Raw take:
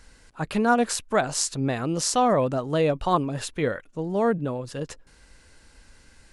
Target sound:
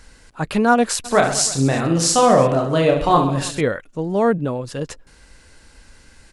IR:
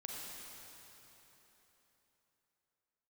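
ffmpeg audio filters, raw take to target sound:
-filter_complex "[0:a]asplit=3[a][b][c];[a]afade=t=out:st=1.04:d=0.02[d];[b]aecho=1:1:30|72|130.8|213.1|328.4:0.631|0.398|0.251|0.158|0.1,afade=t=in:st=1.04:d=0.02,afade=t=out:st=3.6:d=0.02[e];[c]afade=t=in:st=3.6:d=0.02[f];[d][e][f]amix=inputs=3:normalize=0,volume=5.5dB"

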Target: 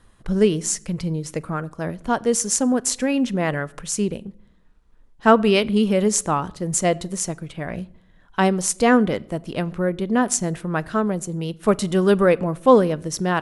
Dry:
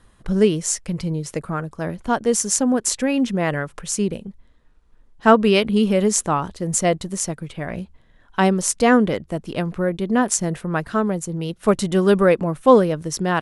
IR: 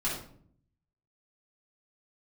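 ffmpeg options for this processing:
-filter_complex "[0:a]asplit=2[a][b];[1:a]atrim=start_sample=2205,adelay=28[c];[b][c]afir=irnorm=-1:irlink=0,volume=-28dB[d];[a][d]amix=inputs=2:normalize=0,volume=-1dB"

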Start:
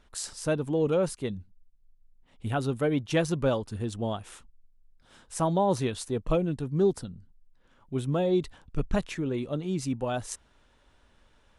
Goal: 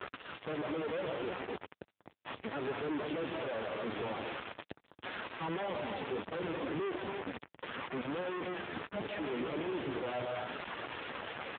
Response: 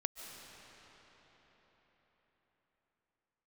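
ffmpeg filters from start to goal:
-filter_complex "[0:a]aeval=exprs='val(0)+0.5*0.0422*sgn(val(0))':c=same,asplit=5[a][b][c][d][e];[b]adelay=436,afreqshift=-120,volume=-19.5dB[f];[c]adelay=872,afreqshift=-240,volume=-26.2dB[g];[d]adelay=1308,afreqshift=-360,volume=-33dB[h];[e]adelay=1744,afreqshift=-480,volume=-39.7dB[i];[a][f][g][h][i]amix=inputs=5:normalize=0,flanger=delay=2.2:depth=7.8:regen=-10:speed=0.73:shape=sinusoidal,acrossover=split=230 2900:gain=0.158 1 0.0891[j][k][l];[j][k][l]amix=inputs=3:normalize=0[m];[1:a]atrim=start_sample=2205,afade=t=out:st=0.36:d=0.01,atrim=end_sample=16317[n];[m][n]afir=irnorm=-1:irlink=0,asoftclip=type=tanh:threshold=-33.5dB,acrusher=bits=4:dc=4:mix=0:aa=0.000001,asplit=3[o][p][q];[o]afade=t=out:st=7.01:d=0.02[r];[p]adynamicequalizer=threshold=0.00126:dfrequency=380:dqfactor=4.3:tfrequency=380:tqfactor=4.3:attack=5:release=100:ratio=0.375:range=2.5:mode=cutabove:tftype=bell,afade=t=in:st=7.01:d=0.02,afade=t=out:st=9.01:d=0.02[s];[q]afade=t=in:st=9.01:d=0.02[t];[r][s][t]amix=inputs=3:normalize=0,volume=7.5dB" -ar 8000 -c:a libopencore_amrnb -b:a 5900

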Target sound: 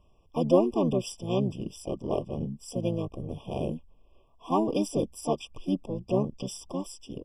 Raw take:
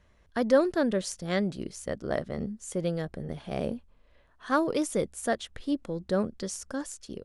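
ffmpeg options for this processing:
-filter_complex "[0:a]asplit=3[a][b][c];[b]asetrate=29433,aresample=44100,atempo=1.49831,volume=-2dB[d];[c]asetrate=55563,aresample=44100,atempo=0.793701,volume=-13dB[e];[a][d][e]amix=inputs=3:normalize=0,afftfilt=real='re*eq(mod(floor(b*sr/1024/1200),2),0)':imag='im*eq(mod(floor(b*sr/1024/1200),2),0)':win_size=1024:overlap=0.75,volume=-1.5dB"

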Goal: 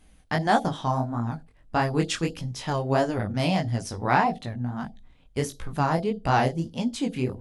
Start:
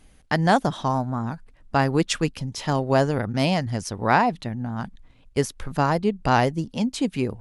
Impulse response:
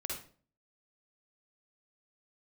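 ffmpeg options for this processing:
-filter_complex "[0:a]flanger=delay=16.5:depth=7.9:speed=1.6,asplit=2[a][b];[b]asuperstop=centerf=1600:order=20:qfactor=0.74[c];[1:a]atrim=start_sample=2205,asetrate=79380,aresample=44100[d];[c][d]afir=irnorm=-1:irlink=0,volume=-8.5dB[e];[a][e]amix=inputs=2:normalize=0"

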